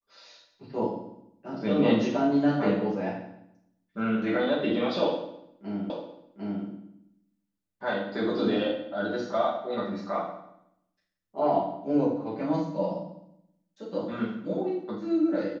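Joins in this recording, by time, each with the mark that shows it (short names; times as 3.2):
5.9 repeat of the last 0.75 s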